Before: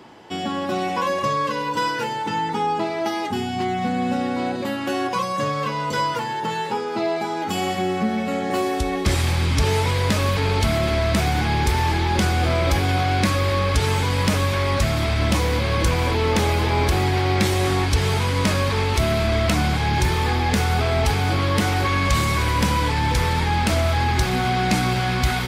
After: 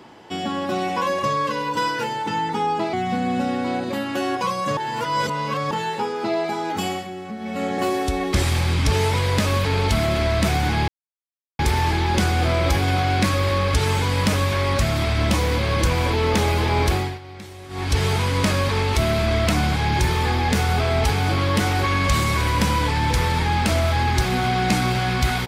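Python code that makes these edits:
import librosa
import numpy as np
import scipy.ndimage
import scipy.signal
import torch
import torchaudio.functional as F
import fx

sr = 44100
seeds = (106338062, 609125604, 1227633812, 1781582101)

y = fx.edit(x, sr, fx.cut(start_s=2.93, length_s=0.72),
    fx.reverse_span(start_s=5.49, length_s=0.94),
    fx.fade_down_up(start_s=7.54, length_s=0.83, db=-10.5, fade_s=0.26),
    fx.insert_silence(at_s=11.6, length_s=0.71),
    fx.fade_down_up(start_s=16.92, length_s=1.06, db=-19.0, fade_s=0.28), tone=tone)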